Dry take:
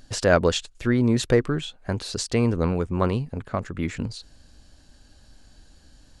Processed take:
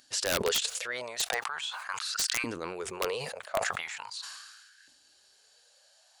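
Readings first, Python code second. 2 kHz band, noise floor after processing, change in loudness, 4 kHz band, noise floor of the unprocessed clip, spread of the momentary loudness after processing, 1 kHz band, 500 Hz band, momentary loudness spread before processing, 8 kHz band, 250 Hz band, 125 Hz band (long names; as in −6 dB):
−2.5 dB, −63 dBFS, −7.5 dB, +1.0 dB, −55 dBFS, 11 LU, −5.0 dB, −11.0 dB, 11 LU, +2.0 dB, −20.0 dB, −24.5 dB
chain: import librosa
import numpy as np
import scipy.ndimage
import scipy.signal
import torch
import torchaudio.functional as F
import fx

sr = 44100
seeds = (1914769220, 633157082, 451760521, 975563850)

y = fx.tone_stack(x, sr, knobs='10-0-10')
y = fx.filter_lfo_highpass(y, sr, shape='saw_up', hz=0.41, low_hz=280.0, high_hz=1700.0, q=6.8)
y = (np.mod(10.0 ** (19.0 / 20.0) * y + 1.0, 2.0) - 1.0) / 10.0 ** (19.0 / 20.0)
y = fx.sustainer(y, sr, db_per_s=38.0)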